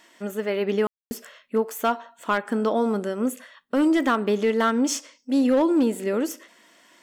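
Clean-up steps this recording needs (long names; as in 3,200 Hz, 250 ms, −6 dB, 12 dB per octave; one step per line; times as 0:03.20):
clipped peaks rebuilt −14 dBFS
ambience match 0:00.87–0:01.11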